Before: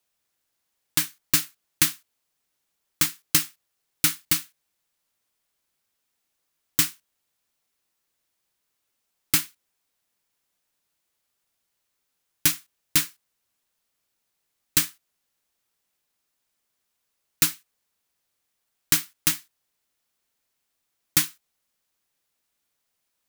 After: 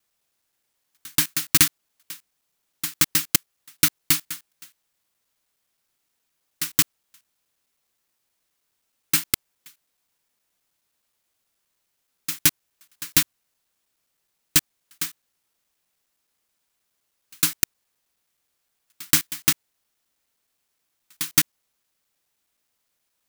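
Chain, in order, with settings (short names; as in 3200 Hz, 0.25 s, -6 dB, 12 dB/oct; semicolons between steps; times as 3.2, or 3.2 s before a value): slices in reverse order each 0.105 s, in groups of 3; gain +2.5 dB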